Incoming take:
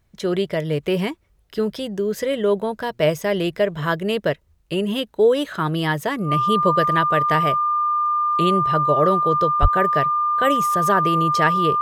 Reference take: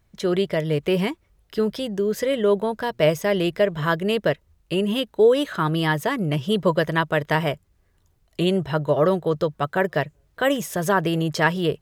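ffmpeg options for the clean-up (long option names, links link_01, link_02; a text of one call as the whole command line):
ffmpeg -i in.wav -filter_complex "[0:a]bandreject=frequency=1200:width=30,asplit=3[link_01][link_02][link_03];[link_01]afade=type=out:start_time=9.61:duration=0.02[link_04];[link_02]highpass=frequency=140:width=0.5412,highpass=frequency=140:width=1.3066,afade=type=in:start_time=9.61:duration=0.02,afade=type=out:start_time=9.73:duration=0.02[link_05];[link_03]afade=type=in:start_time=9.73:duration=0.02[link_06];[link_04][link_05][link_06]amix=inputs=3:normalize=0" out.wav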